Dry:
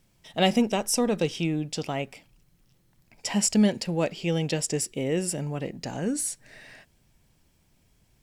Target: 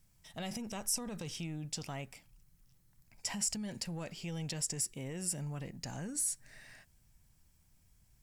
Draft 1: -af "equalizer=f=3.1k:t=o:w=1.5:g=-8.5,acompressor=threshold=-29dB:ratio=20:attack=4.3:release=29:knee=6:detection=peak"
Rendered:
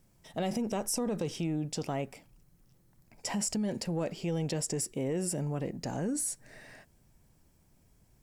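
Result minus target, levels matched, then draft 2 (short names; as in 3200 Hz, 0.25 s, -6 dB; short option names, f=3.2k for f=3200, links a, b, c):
500 Hz band +8.5 dB
-af "equalizer=f=3.1k:t=o:w=1.5:g=-8.5,acompressor=threshold=-29dB:ratio=20:attack=4.3:release=29:knee=6:detection=peak,equalizer=f=410:t=o:w=2.5:g=-13.5"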